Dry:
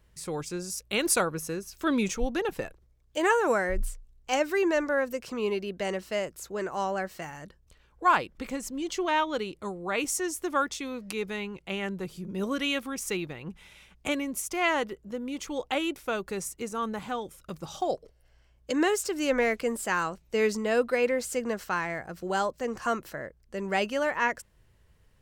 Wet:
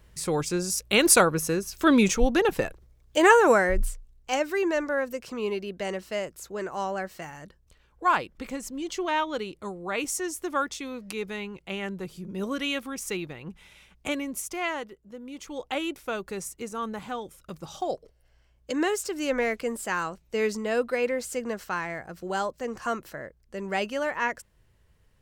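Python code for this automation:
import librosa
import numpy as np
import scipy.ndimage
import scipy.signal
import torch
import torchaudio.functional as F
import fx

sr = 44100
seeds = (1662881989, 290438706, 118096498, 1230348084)

y = fx.gain(x, sr, db=fx.line((3.39, 7.0), (4.43, -0.5), (14.44, -0.5), (14.97, -9.0), (15.78, -1.0)))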